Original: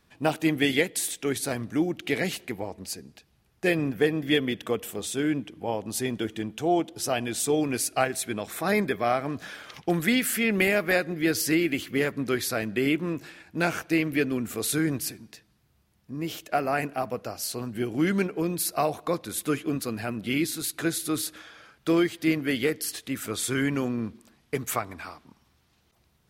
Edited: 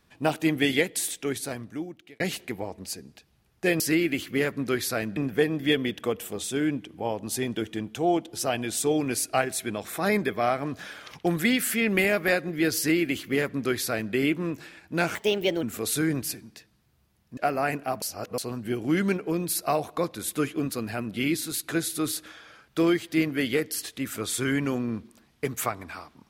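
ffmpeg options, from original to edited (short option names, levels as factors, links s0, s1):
-filter_complex "[0:a]asplit=9[s0][s1][s2][s3][s4][s5][s6][s7][s8];[s0]atrim=end=2.2,asetpts=PTS-STARTPTS,afade=t=out:st=1.1:d=1.1[s9];[s1]atrim=start=2.2:end=3.802,asetpts=PTS-STARTPTS,afade=t=in:d=0.004:c=hsin[s10];[s2]atrim=start=11.398:end=12.772[s11];[s3]atrim=start=3.798:end=13.784[s12];[s4]atrim=start=13.78:end=14.4,asetpts=PTS-STARTPTS,asetrate=56889,aresample=44100,atrim=end_sample=21195,asetpts=PTS-STARTPTS[s13];[s5]atrim=start=14.396:end=16.142[s14];[s6]atrim=start=16.468:end=17.122[s15];[s7]atrim=start=17.118:end=17.482,asetpts=PTS-STARTPTS,areverse[s16];[s8]atrim=start=17.478[s17];[s9][s10]concat=n=2:v=0:a=1[s18];[s18][s11]acrossfade=d=0.004:c1=hsin:c2=hsin[s19];[s19][s12]acrossfade=d=0.004:c1=hsin:c2=hsin[s20];[s20][s13]acrossfade=d=0.004:c1=hsin:c2=hsin[s21];[s21][s14]acrossfade=d=0.004:c1=hsin:c2=hsin[s22];[s22][s15]acrossfade=d=0.004:c1=hsin:c2=hsin[s23];[s23][s16]acrossfade=d=0.004:c1=hsin:c2=hsin[s24];[s24][s17]acrossfade=d=0.004:c1=hsin:c2=hsin"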